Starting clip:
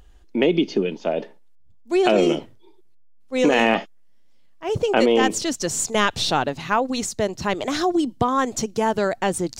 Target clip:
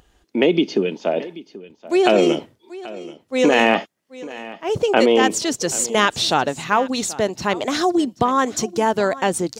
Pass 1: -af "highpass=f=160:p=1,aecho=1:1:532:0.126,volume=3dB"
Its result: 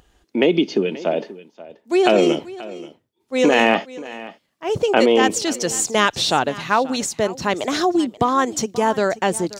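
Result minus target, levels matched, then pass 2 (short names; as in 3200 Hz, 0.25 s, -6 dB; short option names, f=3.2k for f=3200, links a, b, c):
echo 0.251 s early
-af "highpass=f=160:p=1,aecho=1:1:783:0.126,volume=3dB"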